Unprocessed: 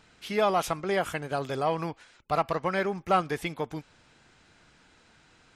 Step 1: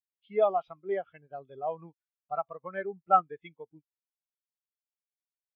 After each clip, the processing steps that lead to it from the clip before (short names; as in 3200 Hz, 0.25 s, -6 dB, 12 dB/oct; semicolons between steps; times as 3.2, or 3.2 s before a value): LPF 4300 Hz 24 dB/oct; high shelf 2500 Hz +12 dB; spectral expander 2.5:1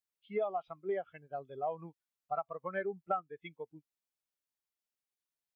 compressor 8:1, threshold -32 dBFS, peak gain reduction 16.5 dB; gain +1 dB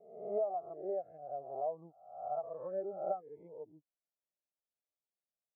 spectral swells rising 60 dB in 0.73 s; ladder low-pass 740 Hz, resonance 55%; gain +1 dB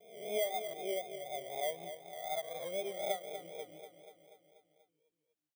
FFT order left unsorted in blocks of 16 samples; feedback echo 0.242 s, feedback 60%, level -10 dB; vibrato 4 Hz 57 cents